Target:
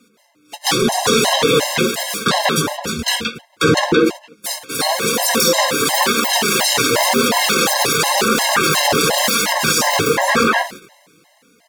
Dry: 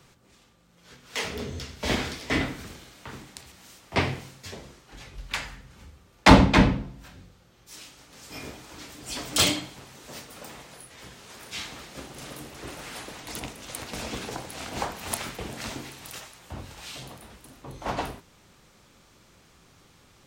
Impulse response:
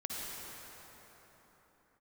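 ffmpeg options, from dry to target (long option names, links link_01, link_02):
-filter_complex "[0:a]highpass=100,bandreject=frequency=187.4:width_type=h:width=4,bandreject=frequency=374.8:width_type=h:width=4,bandreject=frequency=562.2:width_type=h:width=4,bandreject=frequency=749.6:width_type=h:width=4,bandreject=frequency=937:width_type=h:width=4,bandreject=frequency=1124.4:width_type=h:width=4,bandreject=frequency=1311.8:width_type=h:width=4,asplit=2[link_01][link_02];[link_02]acrusher=bits=4:mix=0:aa=0.5,volume=-8.5dB[link_03];[link_01][link_03]amix=inputs=2:normalize=0,flanger=delay=7.1:depth=5.1:regen=10:speed=0.55:shape=sinusoidal,acrusher=bits=8:mode=log:mix=0:aa=0.000001,dynaudnorm=framelen=350:gausssize=13:maxgain=14dB,agate=range=-20dB:threshold=-52dB:ratio=16:detection=peak,asetrate=76440,aresample=44100,highshelf=frequency=10000:gain=-5.5,asplit=2[link_04][link_05];[link_05]adelay=170,highpass=300,lowpass=3400,asoftclip=type=hard:threshold=-10dB,volume=-13dB[link_06];[link_04][link_06]amix=inputs=2:normalize=0,alimiter=level_in=31dB:limit=-1dB:release=50:level=0:latency=1,afftfilt=real='re*gt(sin(2*PI*2.8*pts/sr)*(1-2*mod(floor(b*sr/1024/540),2)),0)':imag='im*gt(sin(2*PI*2.8*pts/sr)*(1-2*mod(floor(b*sr/1024/540),2)),0)':win_size=1024:overlap=0.75,volume=-1.5dB"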